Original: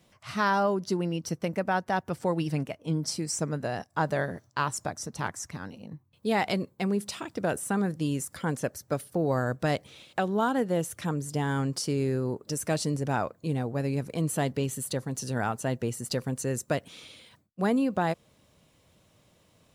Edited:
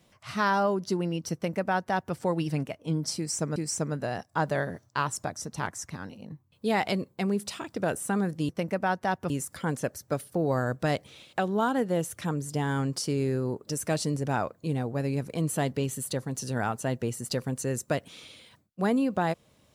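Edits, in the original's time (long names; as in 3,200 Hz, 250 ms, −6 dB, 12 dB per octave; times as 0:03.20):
0:01.34–0:02.15: duplicate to 0:08.10
0:03.17–0:03.56: repeat, 2 plays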